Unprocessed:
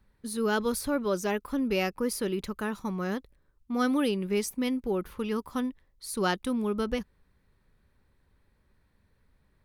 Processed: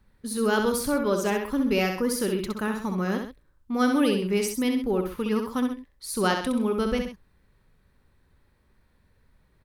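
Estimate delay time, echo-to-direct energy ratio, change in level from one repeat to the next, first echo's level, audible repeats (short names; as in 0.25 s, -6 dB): 65 ms, -4.5 dB, -7.0 dB, -5.5 dB, 2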